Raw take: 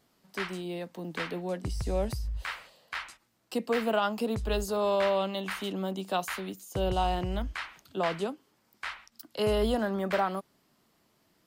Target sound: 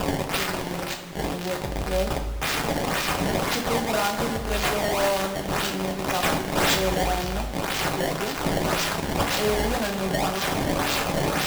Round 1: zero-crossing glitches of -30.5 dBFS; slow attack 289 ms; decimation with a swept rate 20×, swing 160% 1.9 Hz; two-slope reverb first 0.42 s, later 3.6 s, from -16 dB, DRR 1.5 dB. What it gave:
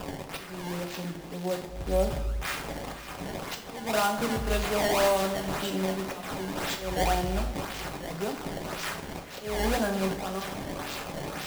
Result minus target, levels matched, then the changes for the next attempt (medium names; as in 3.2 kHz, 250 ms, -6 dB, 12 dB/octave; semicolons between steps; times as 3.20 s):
zero-crossing glitches: distortion -11 dB
change: zero-crossing glitches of -19 dBFS